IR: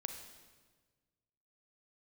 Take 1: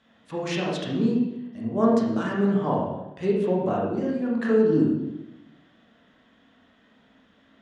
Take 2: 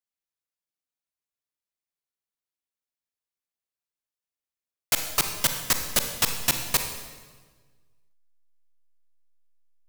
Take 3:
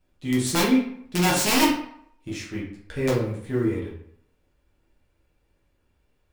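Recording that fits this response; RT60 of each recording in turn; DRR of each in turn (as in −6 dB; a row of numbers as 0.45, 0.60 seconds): 2; 0.95, 1.5, 0.70 seconds; −4.0, 5.5, −5.5 decibels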